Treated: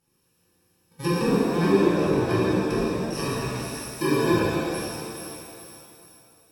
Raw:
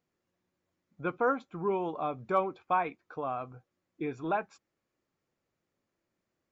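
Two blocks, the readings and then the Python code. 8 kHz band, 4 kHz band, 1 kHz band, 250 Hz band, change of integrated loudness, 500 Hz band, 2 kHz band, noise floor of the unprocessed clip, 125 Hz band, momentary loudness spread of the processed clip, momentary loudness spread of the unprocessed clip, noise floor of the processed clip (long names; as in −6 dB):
can't be measured, +22.5 dB, +1.5 dB, +15.5 dB, +8.5 dB, +9.5 dB, +8.5 dB, −85 dBFS, +18.0 dB, 16 LU, 9 LU, −68 dBFS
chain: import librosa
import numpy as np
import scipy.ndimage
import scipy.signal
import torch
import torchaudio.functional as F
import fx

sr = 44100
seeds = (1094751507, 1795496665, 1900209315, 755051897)

y = fx.bit_reversed(x, sr, seeds[0], block=64)
y = fx.peak_eq(y, sr, hz=260.0, db=-3.5, octaves=0.37)
y = fx.echo_feedback(y, sr, ms=423, feedback_pct=41, wet_db=-16.0)
y = fx.env_lowpass_down(y, sr, base_hz=640.0, full_db=-27.0)
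y = fx.rev_shimmer(y, sr, seeds[1], rt60_s=2.3, semitones=7, shimmer_db=-8, drr_db=-9.0)
y = F.gain(torch.from_numpy(y), 8.5).numpy()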